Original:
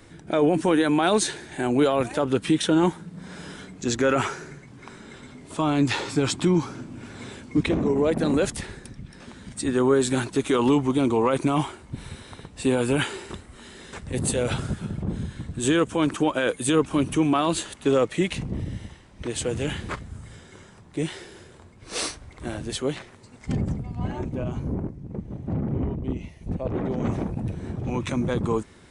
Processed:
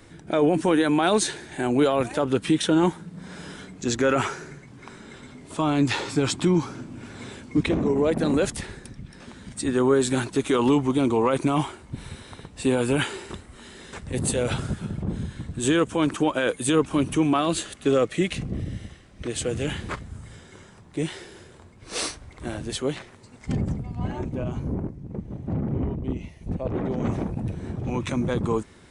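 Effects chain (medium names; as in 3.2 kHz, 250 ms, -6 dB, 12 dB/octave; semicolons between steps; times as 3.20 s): 17.39–19.67 s: band-stop 920 Hz, Q 5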